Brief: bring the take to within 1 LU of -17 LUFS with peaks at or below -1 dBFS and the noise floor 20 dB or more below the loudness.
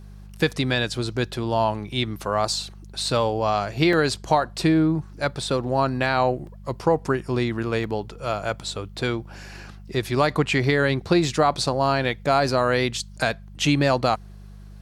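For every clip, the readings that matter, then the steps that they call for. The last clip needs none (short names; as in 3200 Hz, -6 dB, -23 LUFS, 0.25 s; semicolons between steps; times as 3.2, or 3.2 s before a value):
dropouts 4; longest dropout 1.8 ms; hum 50 Hz; harmonics up to 200 Hz; hum level -40 dBFS; loudness -23.5 LUFS; peak -6.0 dBFS; loudness target -17.0 LUFS
-> interpolate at 3.93/6.47/7.84/12.05, 1.8 ms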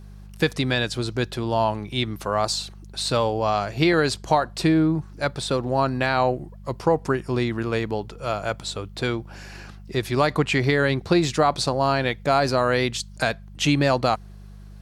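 dropouts 0; hum 50 Hz; harmonics up to 200 Hz; hum level -40 dBFS
-> de-hum 50 Hz, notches 4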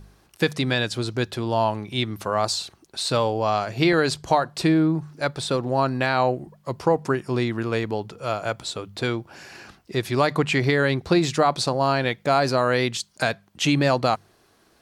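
hum none; loudness -23.5 LUFS; peak -6.5 dBFS; loudness target -17.0 LUFS
-> gain +6.5 dB; limiter -1 dBFS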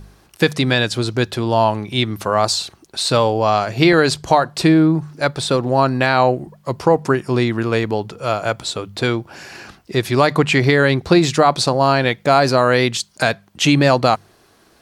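loudness -17.0 LUFS; peak -1.0 dBFS; noise floor -54 dBFS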